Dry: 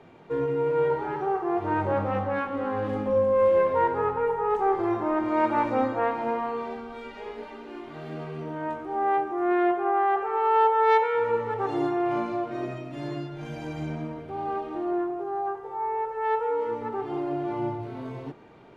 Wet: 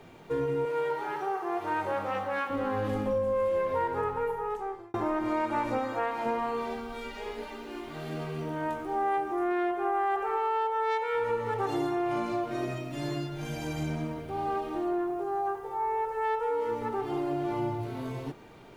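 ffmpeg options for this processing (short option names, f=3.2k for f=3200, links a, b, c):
-filter_complex "[0:a]asettb=1/sr,asplit=3[a][b][c];[a]atrim=end=0.654[d];[b]atrim=start=0.65:end=2.5,asetpts=PTS-STARTPTS,afade=t=in:d=0.004:c=qsin,afade=t=out:st=1.846:d=0.004:c=qsin,highpass=f=660:p=1[e];[c]atrim=start=2.496[f];[d][e]acrossfade=d=0.004:c1=hsin:c2=qsin[g];[g][f]acrossfade=d=0.004:c1=qsin:c2=hsin,asettb=1/sr,asplit=3[h][i][j];[h]atrim=end=5.794[k];[i]atrim=start=5.79:end=6.26,asetpts=PTS-STARTPTS,afade=t=in:d=0.004:c=qsin,afade=t=out:st=0.466:d=0.004:c=qsin,lowshelf=f=360:g=-8[l];[j]atrim=start=6.256[m];[k][l]acrossfade=d=0.004:c1=hsin:c2=qsin[n];[n][m]acrossfade=d=0.004:c1=qsin:c2=hsin,asplit=2[o][p];[o]atrim=end=4.94,asetpts=PTS-STARTPTS,afade=t=out:st=3.89:d=1.05[q];[p]atrim=start=4.94,asetpts=PTS-STARTPTS,afade=t=in:d=0.004:c=hsin[r];[q][r]concat=n=2:v=0:a=1,lowshelf=f=67:g=10.5,acompressor=threshold=-25dB:ratio=6,aemphasis=mode=production:type=75fm"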